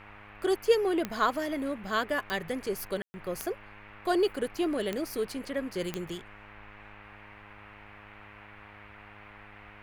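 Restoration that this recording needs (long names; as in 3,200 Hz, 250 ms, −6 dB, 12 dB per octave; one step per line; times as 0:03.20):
click removal
hum removal 103.1 Hz, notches 27
ambience match 0:03.02–0:03.14
noise reduction from a noise print 26 dB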